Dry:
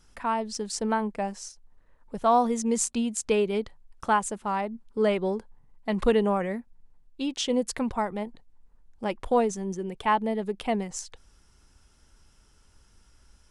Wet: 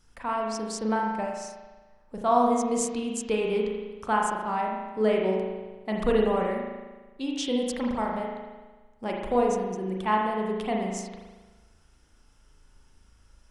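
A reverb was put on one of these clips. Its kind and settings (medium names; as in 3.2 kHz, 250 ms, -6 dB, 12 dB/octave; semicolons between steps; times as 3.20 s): spring tank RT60 1.3 s, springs 37 ms, chirp 50 ms, DRR -1 dB; trim -3.5 dB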